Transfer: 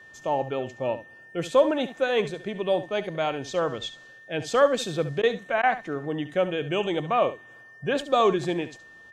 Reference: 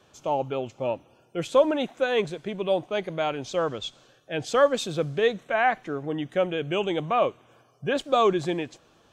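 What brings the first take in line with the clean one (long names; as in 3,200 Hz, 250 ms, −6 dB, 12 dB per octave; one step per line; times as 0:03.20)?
notch filter 1,800 Hz, Q 30
repair the gap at 0:05.22/0:05.62, 11 ms
echo removal 70 ms −13.5 dB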